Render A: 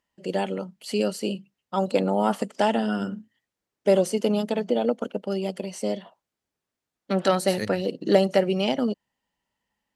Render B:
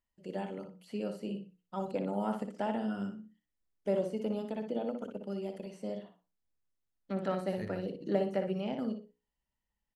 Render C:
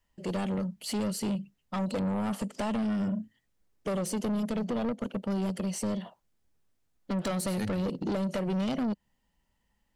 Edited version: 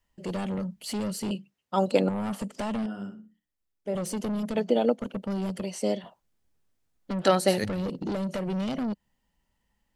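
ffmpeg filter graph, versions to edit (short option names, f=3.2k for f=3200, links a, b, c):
-filter_complex "[0:a]asplit=4[a][b][c][d];[2:a]asplit=6[e][f][g][h][i][j];[e]atrim=end=1.312[k];[a]atrim=start=1.308:end=2.092[l];[f]atrim=start=2.088:end=2.862[m];[1:a]atrim=start=2.858:end=3.952[n];[g]atrim=start=3.948:end=4.562[o];[b]atrim=start=4.558:end=4.992[p];[h]atrim=start=4.988:end=5.632[q];[c]atrim=start=5.628:end=6.042[r];[i]atrim=start=6.038:end=7.242[s];[d]atrim=start=7.238:end=7.642[t];[j]atrim=start=7.638[u];[k][l]acrossfade=d=0.004:c1=hsin:c2=hsin[v];[v][m]acrossfade=d=0.004:c1=hsin:c2=hsin[w];[w][n]acrossfade=d=0.004:c1=hsin:c2=hsin[x];[x][o]acrossfade=d=0.004:c1=hsin:c2=hsin[y];[y][p]acrossfade=d=0.004:c1=hsin:c2=hsin[z];[z][q]acrossfade=d=0.004:c1=hsin:c2=hsin[aa];[aa][r]acrossfade=d=0.004:c1=hsin:c2=hsin[ab];[ab][s]acrossfade=d=0.004:c1=hsin:c2=hsin[ac];[ac][t]acrossfade=d=0.004:c1=hsin:c2=hsin[ad];[ad][u]acrossfade=d=0.004:c1=hsin:c2=hsin"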